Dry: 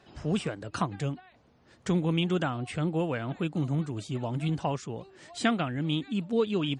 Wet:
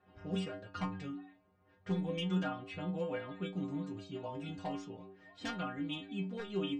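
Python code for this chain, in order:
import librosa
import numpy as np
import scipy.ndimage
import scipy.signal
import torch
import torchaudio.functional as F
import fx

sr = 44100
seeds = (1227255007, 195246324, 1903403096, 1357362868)

y = fx.env_lowpass(x, sr, base_hz=2000.0, full_db=-24.0)
y = 10.0 ** (-19.0 / 20.0) * (np.abs((y / 10.0 ** (-19.0 / 20.0) + 3.0) % 4.0 - 2.0) - 1.0)
y = fx.air_absorb(y, sr, metres=53.0)
y = fx.stiff_resonator(y, sr, f0_hz=92.0, decay_s=0.55, stiffness=0.008)
y = y * librosa.db_to_amplitude(4.5)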